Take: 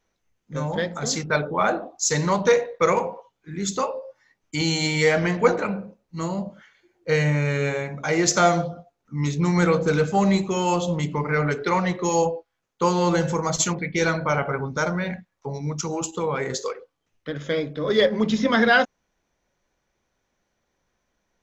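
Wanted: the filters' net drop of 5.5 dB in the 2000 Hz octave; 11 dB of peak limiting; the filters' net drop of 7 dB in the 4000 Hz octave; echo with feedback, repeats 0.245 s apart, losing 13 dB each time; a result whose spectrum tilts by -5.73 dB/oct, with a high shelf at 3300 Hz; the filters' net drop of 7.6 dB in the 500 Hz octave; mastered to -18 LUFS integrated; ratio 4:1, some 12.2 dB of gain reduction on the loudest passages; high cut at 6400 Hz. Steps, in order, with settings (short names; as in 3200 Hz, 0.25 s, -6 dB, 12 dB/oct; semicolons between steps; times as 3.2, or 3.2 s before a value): LPF 6400 Hz; bell 500 Hz -8.5 dB; bell 2000 Hz -5 dB; high shelf 3300 Hz -4 dB; bell 4000 Hz -3.5 dB; compressor 4:1, threshold -33 dBFS; limiter -32.5 dBFS; feedback echo 0.245 s, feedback 22%, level -13 dB; gain +23 dB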